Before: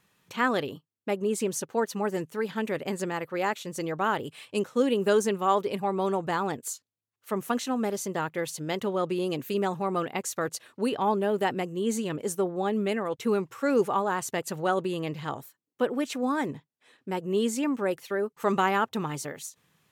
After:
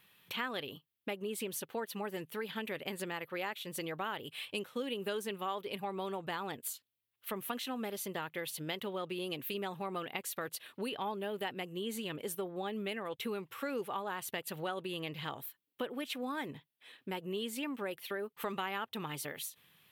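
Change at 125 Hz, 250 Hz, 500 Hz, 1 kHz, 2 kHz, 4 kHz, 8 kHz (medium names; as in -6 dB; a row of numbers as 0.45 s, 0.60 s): -11.0 dB, -12.0 dB, -12.0 dB, -11.5 dB, -7.5 dB, -2.0 dB, -8.5 dB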